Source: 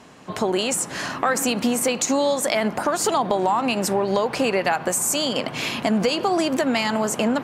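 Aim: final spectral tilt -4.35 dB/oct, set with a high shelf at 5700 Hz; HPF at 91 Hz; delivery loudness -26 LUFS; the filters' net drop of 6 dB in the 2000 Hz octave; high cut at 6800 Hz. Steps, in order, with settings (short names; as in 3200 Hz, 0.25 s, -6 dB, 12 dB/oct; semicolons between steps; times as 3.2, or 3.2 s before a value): HPF 91 Hz; LPF 6800 Hz; bell 2000 Hz -7 dB; high shelf 5700 Hz -6.5 dB; gain -2.5 dB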